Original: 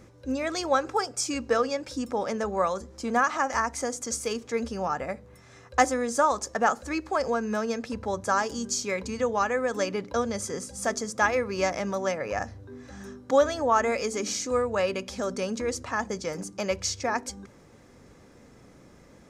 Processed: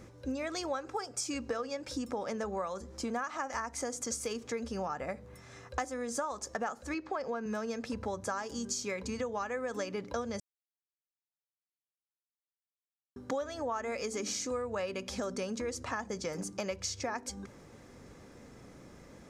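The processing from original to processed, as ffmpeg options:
-filter_complex "[0:a]asettb=1/sr,asplit=3[a][b][c];[a]atrim=end=6.944[d];[b]atrim=start=6.94:end=7.46,asetpts=PTS-STARTPTS,afade=t=in:d=0.004:c=qsin,afade=t=out:st=0.516:d=0.004:c=qsin,highpass=130,lowpass=4.4k[e];[c]atrim=start=7.456[f];[d][e]acrossfade=d=0.004:c1=hsin:c2=qsin[g];[g][f]acrossfade=d=0.004:c1=qsin:c2=hsin,asplit=3[h][i][j];[h]atrim=end=10.4,asetpts=PTS-STARTPTS,afade=t=out:st=10.396:d=0.004:c=hsin[k];[i]atrim=start=10.4:end=13.16,asetpts=PTS-STARTPTS,volume=0[l];[j]atrim=start=13.16,asetpts=PTS-STARTPTS,afade=t=in:d=0.004:c=hsin[m];[k][l][m]concat=n=3:v=0:a=1,acompressor=threshold=-33dB:ratio=6"

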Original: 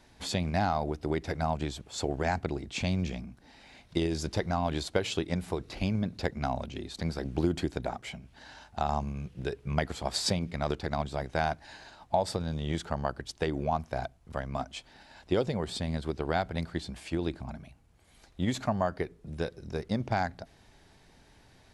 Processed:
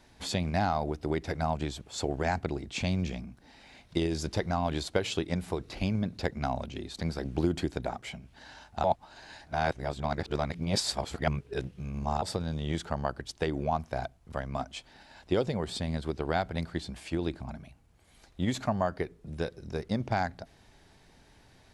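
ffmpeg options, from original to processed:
-filter_complex "[0:a]asplit=3[a][b][c];[a]atrim=end=8.842[d];[b]atrim=start=8.838:end=12.222,asetpts=PTS-STARTPTS,areverse[e];[c]atrim=start=12.218[f];[d][e]acrossfade=d=0.004:c1=hsin:c2=hsin[g];[g][f]acrossfade=d=0.004:c1=hsin:c2=hsin"

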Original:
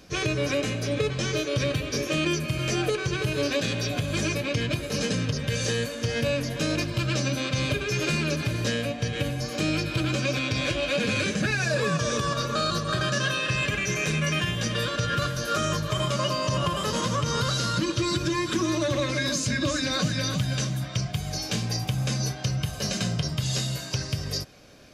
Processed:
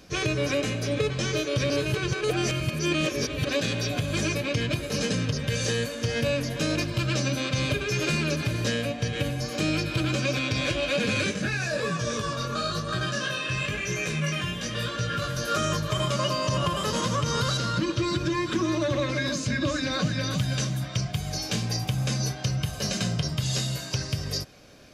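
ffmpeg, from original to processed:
-filter_complex "[0:a]asplit=3[a][b][c];[a]afade=t=out:st=11.31:d=0.02[d];[b]flanger=delay=16.5:depth=5.7:speed=1,afade=t=in:st=11.31:d=0.02,afade=t=out:st=15.28:d=0.02[e];[c]afade=t=in:st=15.28:d=0.02[f];[d][e][f]amix=inputs=3:normalize=0,asettb=1/sr,asplit=3[g][h][i];[g]atrim=end=17.574[j];[h]atrim=start=17.57:end=20.31,asetpts=PTS-STARTPTS,afade=t=in:d=0.004:c=qsin,afade=t=out:st=2.736:d=0.004:c=qsin,highshelf=f=6.1k:g=-11[k];[i]atrim=start=20.306[l];[j][k]acrossfade=d=0.004:c1=hsin:c2=qsin[m];[m][l]acrossfade=d=0.004:c1=qsin:c2=hsin,asplit=3[n][o][p];[n]atrim=end=1.702[q];[o]atrim=start=1.698:end=3.492,asetpts=PTS-STARTPTS,areverse[r];[p]atrim=start=3.488[s];[q][r]acrossfade=d=0.004:c1=hsin:c2=hsin[t];[t][s]acrossfade=d=0.004:c1=hsin:c2=hsin"

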